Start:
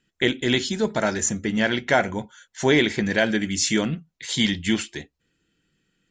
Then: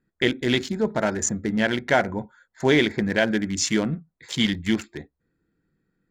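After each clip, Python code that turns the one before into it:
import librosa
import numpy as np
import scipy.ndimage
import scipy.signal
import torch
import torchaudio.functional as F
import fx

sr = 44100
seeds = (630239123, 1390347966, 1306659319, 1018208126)

y = fx.wiener(x, sr, points=15)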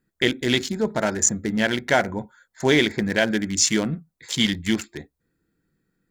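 y = fx.high_shelf(x, sr, hz=4900.0, db=9.5)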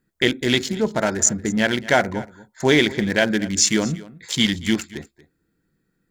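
y = x + 10.0 ** (-19.0 / 20.0) * np.pad(x, (int(233 * sr / 1000.0), 0))[:len(x)]
y = y * 10.0 ** (2.0 / 20.0)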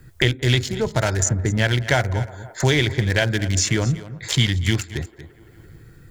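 y = fx.low_shelf_res(x, sr, hz=150.0, db=9.5, q=3.0)
y = fx.echo_wet_bandpass(y, sr, ms=170, feedback_pct=56, hz=700.0, wet_db=-23.0)
y = fx.band_squash(y, sr, depth_pct=70)
y = y * 10.0 ** (-1.0 / 20.0)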